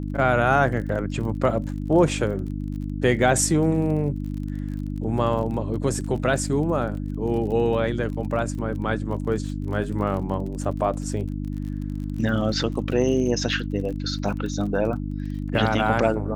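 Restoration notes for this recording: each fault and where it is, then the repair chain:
surface crackle 30 per second −33 dBFS
mains hum 50 Hz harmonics 6 −29 dBFS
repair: click removal
hum removal 50 Hz, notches 6

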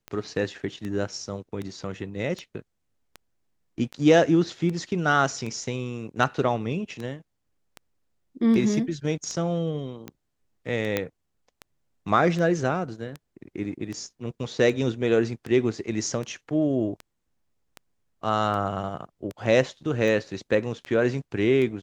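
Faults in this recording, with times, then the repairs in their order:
scratch tick 78 rpm −21 dBFS
0:10.97: click −10 dBFS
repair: click removal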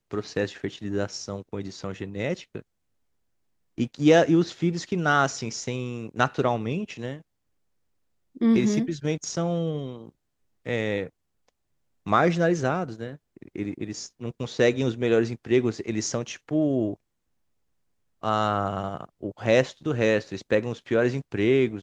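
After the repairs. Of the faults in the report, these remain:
none of them is left

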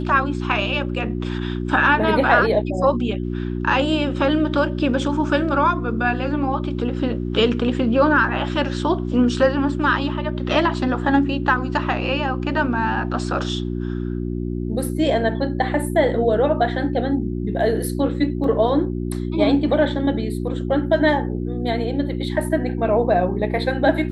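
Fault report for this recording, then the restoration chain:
mains hum 60 Hz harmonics 6 −25 dBFS
0:18.44: drop-out 2.9 ms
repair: hum removal 60 Hz, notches 6
repair the gap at 0:18.44, 2.9 ms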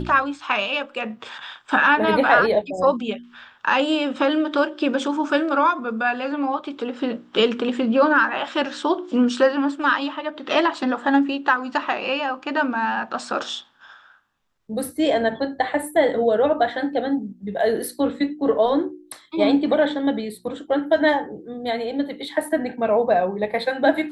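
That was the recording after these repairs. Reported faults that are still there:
none of them is left

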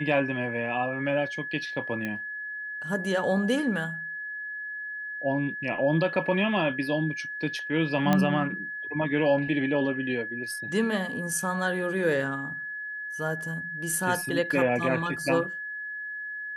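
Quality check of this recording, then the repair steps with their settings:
whistle 1,700 Hz −33 dBFS
0:02.05: click −19 dBFS
0:08.13: click −10 dBFS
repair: click removal
notch filter 1,700 Hz, Q 30

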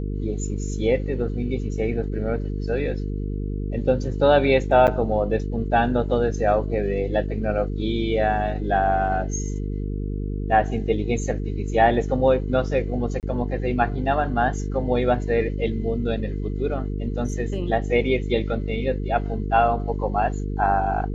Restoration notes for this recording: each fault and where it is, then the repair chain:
mains buzz 50 Hz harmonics 9 −27 dBFS
0:04.87–0:04.88: drop-out 8.2 ms
0:13.20–0:13.23: drop-out 28 ms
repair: hum removal 50 Hz, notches 9
repair the gap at 0:04.87, 8.2 ms
repair the gap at 0:13.20, 28 ms

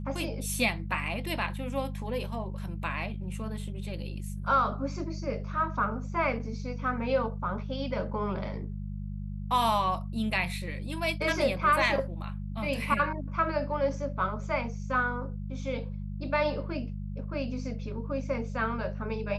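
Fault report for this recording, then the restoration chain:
mains hum 50 Hz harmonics 4 −36 dBFS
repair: hum removal 50 Hz, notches 4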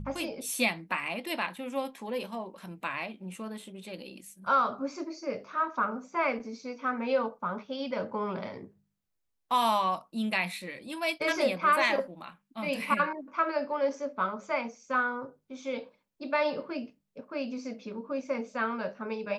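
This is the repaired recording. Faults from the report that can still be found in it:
none of them is left

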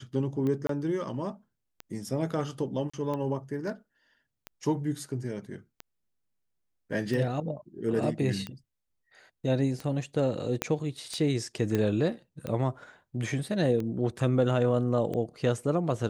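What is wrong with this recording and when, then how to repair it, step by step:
scratch tick 45 rpm −22 dBFS
0:00.67–0:00.69: drop-out 23 ms
0:02.90–0:02.94: drop-out 35 ms
0:10.62: click −11 dBFS
0:11.75: click −15 dBFS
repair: click removal
repair the gap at 0:00.67, 23 ms
repair the gap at 0:02.90, 35 ms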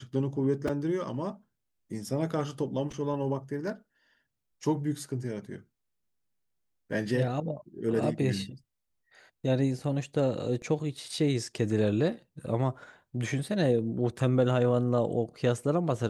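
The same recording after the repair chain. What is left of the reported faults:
0:10.62: click

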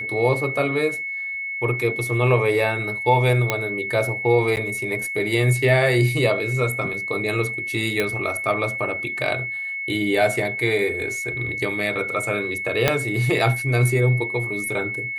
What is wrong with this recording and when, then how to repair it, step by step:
whistle 2,200 Hz −26 dBFS
0:03.50: click −5 dBFS
0:04.56–0:04.57: drop-out 9.1 ms
0:08.00: click −8 dBFS
0:12.88: click −2 dBFS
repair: click removal
notch filter 2,200 Hz, Q 30
repair the gap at 0:04.56, 9.1 ms

